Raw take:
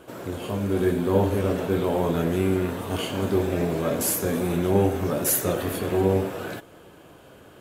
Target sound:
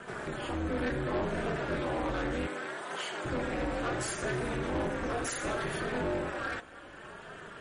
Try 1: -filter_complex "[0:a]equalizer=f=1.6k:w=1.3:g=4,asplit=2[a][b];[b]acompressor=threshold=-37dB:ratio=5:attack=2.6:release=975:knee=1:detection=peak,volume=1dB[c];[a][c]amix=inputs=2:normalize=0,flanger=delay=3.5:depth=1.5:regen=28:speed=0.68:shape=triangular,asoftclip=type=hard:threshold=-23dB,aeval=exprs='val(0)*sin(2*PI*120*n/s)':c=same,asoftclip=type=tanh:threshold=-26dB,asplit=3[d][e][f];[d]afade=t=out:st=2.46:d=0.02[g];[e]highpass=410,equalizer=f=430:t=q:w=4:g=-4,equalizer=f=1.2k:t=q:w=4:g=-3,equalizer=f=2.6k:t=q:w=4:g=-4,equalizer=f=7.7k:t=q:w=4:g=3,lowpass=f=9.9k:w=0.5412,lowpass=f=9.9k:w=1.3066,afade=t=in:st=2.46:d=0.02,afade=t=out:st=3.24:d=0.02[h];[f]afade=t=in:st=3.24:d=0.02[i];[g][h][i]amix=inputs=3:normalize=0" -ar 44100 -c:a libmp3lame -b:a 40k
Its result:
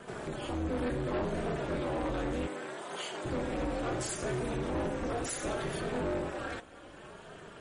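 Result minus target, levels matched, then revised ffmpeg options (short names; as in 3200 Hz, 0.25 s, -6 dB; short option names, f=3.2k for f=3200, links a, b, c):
hard clip: distortion +9 dB; 2000 Hz band -4.5 dB
-filter_complex "[0:a]equalizer=f=1.6k:w=1.3:g=11.5,asplit=2[a][b];[b]acompressor=threshold=-37dB:ratio=5:attack=2.6:release=975:knee=1:detection=peak,volume=1dB[c];[a][c]amix=inputs=2:normalize=0,flanger=delay=3.5:depth=1.5:regen=28:speed=0.68:shape=triangular,asoftclip=type=hard:threshold=-17dB,aeval=exprs='val(0)*sin(2*PI*120*n/s)':c=same,asoftclip=type=tanh:threshold=-26dB,asplit=3[d][e][f];[d]afade=t=out:st=2.46:d=0.02[g];[e]highpass=410,equalizer=f=430:t=q:w=4:g=-4,equalizer=f=1.2k:t=q:w=4:g=-3,equalizer=f=2.6k:t=q:w=4:g=-4,equalizer=f=7.7k:t=q:w=4:g=3,lowpass=f=9.9k:w=0.5412,lowpass=f=9.9k:w=1.3066,afade=t=in:st=2.46:d=0.02,afade=t=out:st=3.24:d=0.02[h];[f]afade=t=in:st=3.24:d=0.02[i];[g][h][i]amix=inputs=3:normalize=0" -ar 44100 -c:a libmp3lame -b:a 40k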